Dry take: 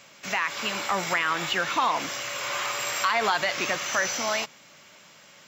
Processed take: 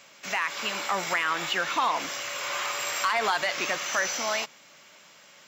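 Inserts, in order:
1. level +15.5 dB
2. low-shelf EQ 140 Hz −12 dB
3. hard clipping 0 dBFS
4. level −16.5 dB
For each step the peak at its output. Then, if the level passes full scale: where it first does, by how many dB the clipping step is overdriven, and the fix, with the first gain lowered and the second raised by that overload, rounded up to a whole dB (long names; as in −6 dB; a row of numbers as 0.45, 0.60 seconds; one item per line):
+6.0, +6.0, 0.0, −16.5 dBFS
step 1, 6.0 dB
step 1 +9.5 dB, step 4 −10.5 dB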